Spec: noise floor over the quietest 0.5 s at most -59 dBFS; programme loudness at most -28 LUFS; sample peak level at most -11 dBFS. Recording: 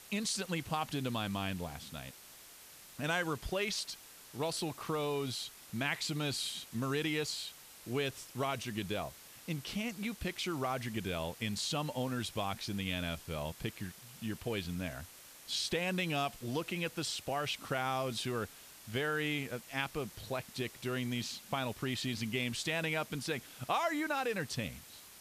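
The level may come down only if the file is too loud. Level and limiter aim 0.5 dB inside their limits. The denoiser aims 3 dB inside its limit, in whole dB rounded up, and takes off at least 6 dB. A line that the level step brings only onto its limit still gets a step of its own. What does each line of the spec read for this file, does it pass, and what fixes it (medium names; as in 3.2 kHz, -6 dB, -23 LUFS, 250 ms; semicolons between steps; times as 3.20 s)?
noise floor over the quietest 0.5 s -55 dBFS: fail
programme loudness -37.0 LUFS: pass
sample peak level -18.5 dBFS: pass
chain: noise reduction 7 dB, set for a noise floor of -55 dBFS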